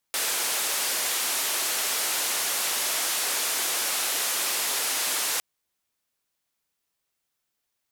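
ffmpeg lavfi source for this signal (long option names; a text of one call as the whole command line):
ffmpeg -f lavfi -i "anoisesrc=color=white:duration=5.26:sample_rate=44100:seed=1,highpass=frequency=400,lowpass=frequency=13000,volume=-19.7dB" out.wav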